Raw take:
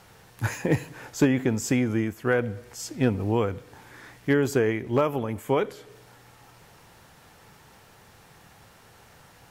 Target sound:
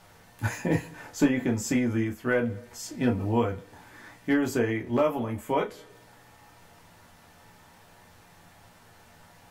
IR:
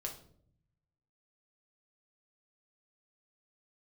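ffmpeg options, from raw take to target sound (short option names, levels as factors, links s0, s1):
-filter_complex "[1:a]atrim=start_sample=2205,atrim=end_sample=3528,asetrate=70560,aresample=44100[s0];[0:a][s0]afir=irnorm=-1:irlink=0,volume=1.5"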